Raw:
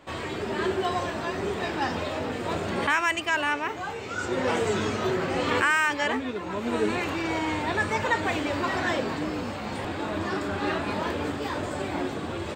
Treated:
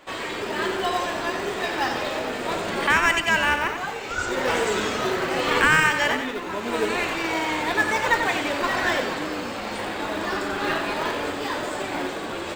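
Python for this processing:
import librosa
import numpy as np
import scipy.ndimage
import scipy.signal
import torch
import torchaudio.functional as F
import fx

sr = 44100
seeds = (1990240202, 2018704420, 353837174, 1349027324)

p1 = fx.highpass(x, sr, hz=680.0, slope=6)
p2 = fx.sample_hold(p1, sr, seeds[0], rate_hz=1400.0, jitter_pct=0)
p3 = p1 + (p2 * librosa.db_to_amplitude(-11.5))
p4 = fx.echo_feedback(p3, sr, ms=90, feedback_pct=44, wet_db=-7.5)
y = p4 * librosa.db_to_amplitude(5.0)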